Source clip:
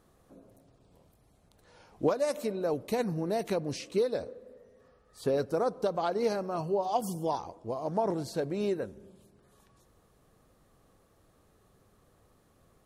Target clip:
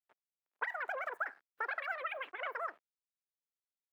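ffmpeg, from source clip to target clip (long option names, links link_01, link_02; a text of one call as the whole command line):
ffmpeg -i in.wav -filter_complex "[0:a]aeval=exprs='val(0)*gte(abs(val(0)),0.00398)':channel_layout=same,asetrate=144648,aresample=44100,acrossover=split=280 2200:gain=0.1 1 0.0794[link_01][link_02][link_03];[link_01][link_02][link_03]amix=inputs=3:normalize=0,volume=-6.5dB" out.wav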